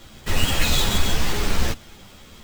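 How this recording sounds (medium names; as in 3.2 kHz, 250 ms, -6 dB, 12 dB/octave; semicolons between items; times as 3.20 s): aliases and images of a low sample rate 11 kHz, jitter 20%; a shimmering, thickened sound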